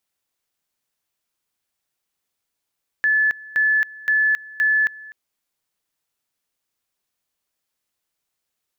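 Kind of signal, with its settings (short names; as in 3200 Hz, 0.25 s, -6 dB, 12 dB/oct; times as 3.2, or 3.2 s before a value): two-level tone 1730 Hz -14.5 dBFS, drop 21.5 dB, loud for 0.27 s, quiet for 0.25 s, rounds 4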